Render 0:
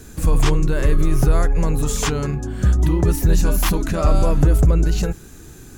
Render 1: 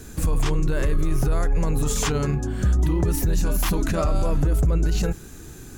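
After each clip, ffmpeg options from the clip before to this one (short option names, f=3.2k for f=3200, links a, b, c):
-af "alimiter=limit=-14dB:level=0:latency=1:release=22"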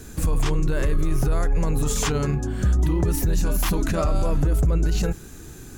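-af anull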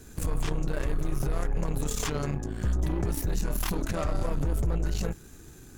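-af "aeval=exprs='0.211*(cos(1*acos(clip(val(0)/0.211,-1,1)))-cos(1*PI/2))+0.0422*(cos(4*acos(clip(val(0)/0.211,-1,1)))-cos(4*PI/2))':c=same,volume=-8dB"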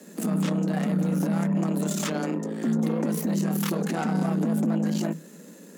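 -af "afreqshift=160,volume=1.5dB"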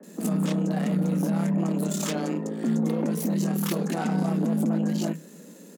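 -filter_complex "[0:a]acrossover=split=1500[a][b];[b]adelay=30[c];[a][c]amix=inputs=2:normalize=0"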